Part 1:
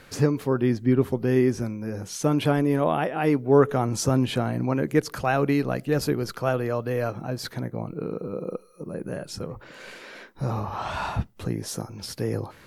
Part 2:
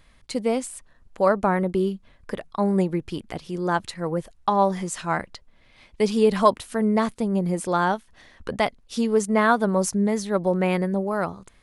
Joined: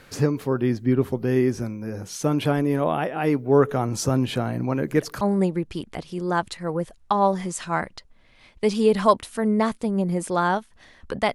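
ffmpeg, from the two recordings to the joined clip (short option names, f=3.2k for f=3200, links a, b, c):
-filter_complex "[1:a]asplit=2[a][b];[0:a]apad=whole_dur=11.34,atrim=end=11.34,atrim=end=5.212[c];[b]atrim=start=2.578:end=8.71[d];[a]atrim=start=1.97:end=2.58,asetpts=PTS-STARTPTS,volume=-9dB,afade=t=in:d=0.004:c=hsin,afade=t=out:st=0.606:d=0.004:c=hsin,adelay=4600[e];[c][d]acrossfade=d=0.004:c1=hsin:c2=hsin[f];[f][e]amix=inputs=2:normalize=0"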